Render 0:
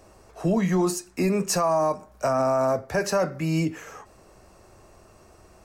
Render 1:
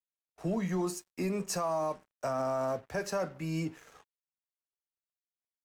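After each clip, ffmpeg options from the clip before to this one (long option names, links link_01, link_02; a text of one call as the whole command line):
ffmpeg -i in.wav -af "aeval=exprs='sgn(val(0))*max(abs(val(0))-0.00562,0)':channel_layout=same,agate=range=-27dB:threshold=-49dB:ratio=16:detection=peak,volume=-9dB" out.wav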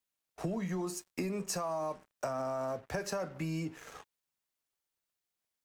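ffmpeg -i in.wav -af "acompressor=threshold=-41dB:ratio=6,volume=7.5dB" out.wav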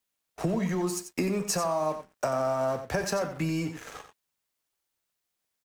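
ffmpeg -i in.wav -filter_complex "[0:a]asplit=2[link_01][link_02];[link_02]aeval=exprs='val(0)*gte(abs(val(0)),0.00708)':channel_layout=same,volume=-11dB[link_03];[link_01][link_03]amix=inputs=2:normalize=0,aecho=1:1:90:0.316,volume=5dB" out.wav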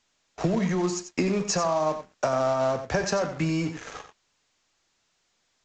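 ffmpeg -i in.wav -filter_complex "[0:a]asplit=2[link_01][link_02];[link_02]acrusher=bits=2:mode=log:mix=0:aa=0.000001,volume=-7dB[link_03];[link_01][link_03]amix=inputs=2:normalize=0" -ar 16000 -c:a pcm_alaw out.wav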